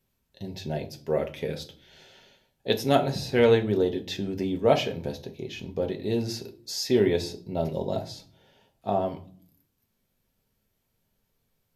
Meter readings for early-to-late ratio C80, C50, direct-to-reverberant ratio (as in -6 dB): 21.0 dB, 14.5 dB, 3.5 dB